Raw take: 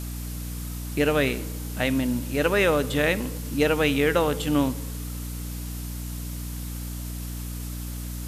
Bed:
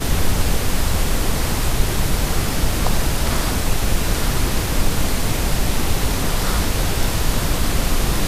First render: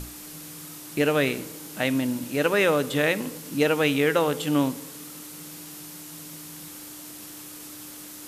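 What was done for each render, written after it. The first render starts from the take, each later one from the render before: hum notches 60/120/180/240 Hz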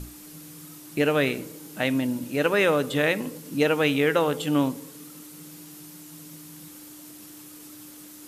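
noise reduction 6 dB, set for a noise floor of -42 dBFS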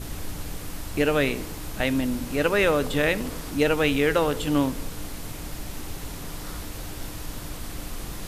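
add bed -16.5 dB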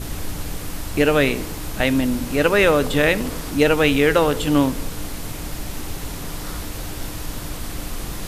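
trim +5.5 dB

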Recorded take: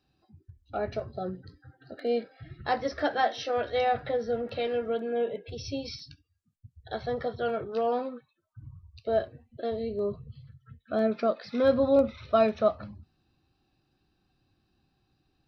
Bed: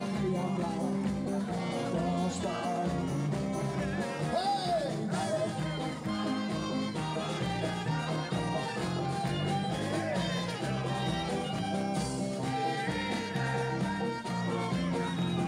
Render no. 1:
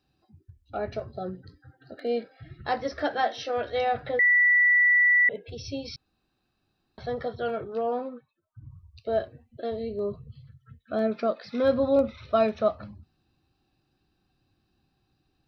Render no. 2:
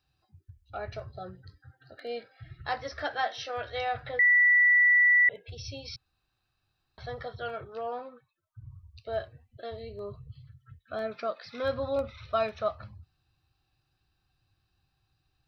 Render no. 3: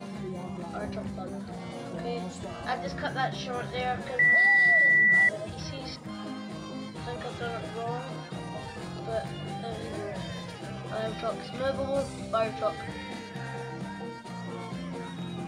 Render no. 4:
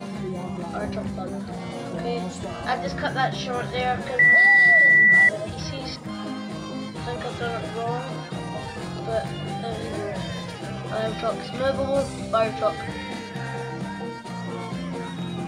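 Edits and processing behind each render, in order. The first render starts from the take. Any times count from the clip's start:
4.19–5.29 s: bleep 1.96 kHz -16.5 dBFS; 5.96–6.98 s: room tone; 7.73–8.71 s: treble shelf 2.4 kHz -11 dB
FFT filter 120 Hz 0 dB, 220 Hz -15 dB, 1.2 kHz -1 dB
add bed -5.5 dB
trim +6 dB

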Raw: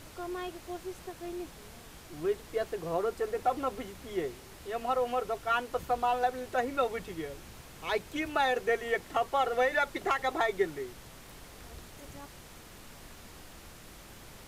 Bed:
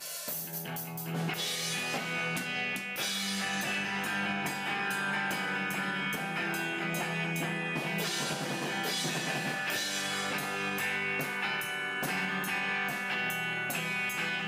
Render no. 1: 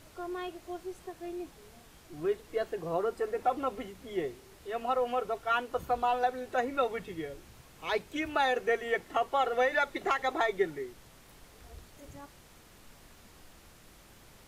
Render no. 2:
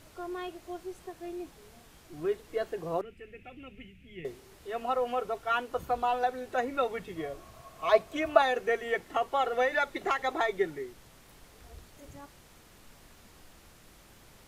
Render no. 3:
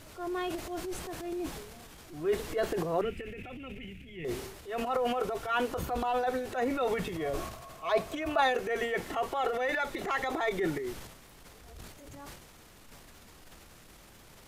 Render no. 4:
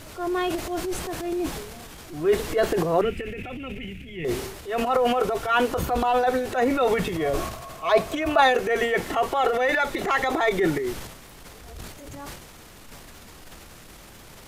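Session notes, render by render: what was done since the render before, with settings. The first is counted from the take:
noise print and reduce 6 dB
3.01–4.25 s: FFT filter 160 Hz 0 dB, 340 Hz -13 dB, 700 Hz -22 dB, 1 kHz -29 dB, 2.6 kHz +4 dB, 4.1 kHz -19 dB; 7.16–8.42 s: small resonant body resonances 670/1100 Hz, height 18 dB, ringing for 55 ms
transient shaper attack -6 dB, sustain +10 dB; gain riding within 4 dB 0.5 s
trim +8.5 dB

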